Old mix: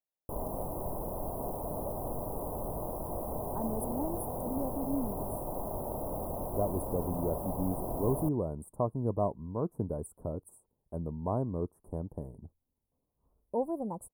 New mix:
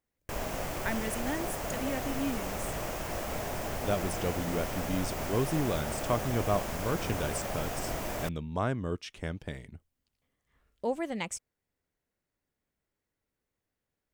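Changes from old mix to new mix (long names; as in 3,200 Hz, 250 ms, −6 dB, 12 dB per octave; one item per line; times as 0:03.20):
speech: entry −2.70 s
master: remove Chebyshev band-stop filter 990–9,900 Hz, order 4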